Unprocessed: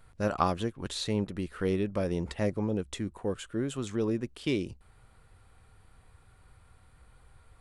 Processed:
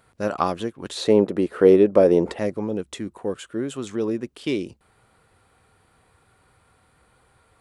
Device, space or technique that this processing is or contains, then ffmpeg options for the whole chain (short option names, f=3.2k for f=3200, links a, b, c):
filter by subtraction: -filter_complex "[0:a]asplit=2[a][b];[b]lowpass=330,volume=-1[c];[a][c]amix=inputs=2:normalize=0,asettb=1/sr,asplit=3[d][e][f];[d]atrim=end=0.974[g];[e]atrim=start=0.97:end=2.39,asetpts=PTS-STARTPTS,afade=t=in:d=0.004:c=qsin,afade=t=out:st=1.416:d=0.004:c=qsin,equalizer=f=490:w=0.53:g=12.5[h];[f]atrim=start=2.386[i];[g][h]acrossfade=d=0.004:c1=hsin:c2=qsin[j];[j][i]acrossfade=d=0.004:c1=qsin:c2=hsin,volume=3.5dB"